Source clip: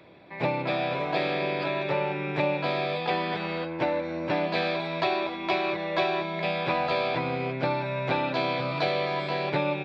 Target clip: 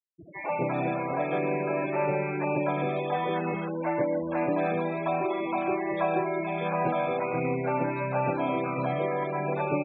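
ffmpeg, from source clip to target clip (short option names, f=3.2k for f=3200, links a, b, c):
-filter_complex "[0:a]aeval=exprs='val(0)+0.5*0.00944*sgn(val(0))':c=same,afftfilt=real='re*gte(hypot(re,im),0.00794)':imag='im*gte(hypot(re,im),0.00794)':win_size=1024:overlap=0.75,highshelf=f=2.3k:g=5.5,acrossover=split=120|1200[a][b][c];[a]acompressor=threshold=-54dB:ratio=16[d];[c]alimiter=level_in=5dB:limit=-24dB:level=0:latency=1:release=19,volume=-5dB[e];[d][b][e]amix=inputs=3:normalize=0,aphaser=in_gain=1:out_gain=1:delay=3.7:decay=0.2:speed=1.5:type=sinusoidal,asplit=2[f][g];[g]adynamicsmooth=sensitivity=3.5:basefreq=1.6k,volume=0dB[h];[f][h]amix=inputs=2:normalize=0,acrossover=split=600|2400[i][j][k];[j]adelay=40[l];[i]adelay=180[m];[m][l][k]amix=inputs=3:normalize=0,afftfilt=real='re*gte(hypot(re,im),0.0501)':imag='im*gte(hypot(re,im),0.0501)':win_size=1024:overlap=0.75,aresample=8000,aresample=44100,volume=-4.5dB"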